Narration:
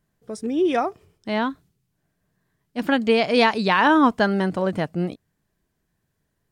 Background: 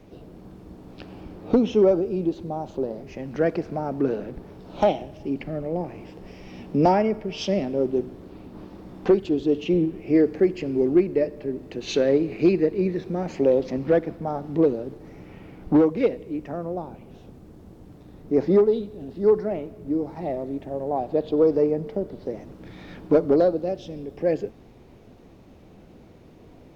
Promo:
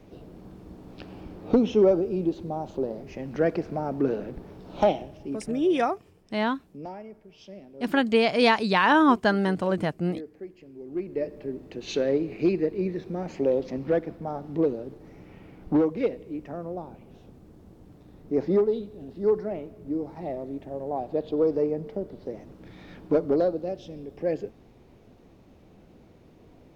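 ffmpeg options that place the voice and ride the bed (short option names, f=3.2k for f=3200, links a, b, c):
-filter_complex "[0:a]adelay=5050,volume=-2.5dB[a];[1:a]volume=14.5dB,afade=t=out:st=4.91:d=0.86:silence=0.112202,afade=t=in:st=10.85:d=0.49:silence=0.158489[b];[a][b]amix=inputs=2:normalize=0"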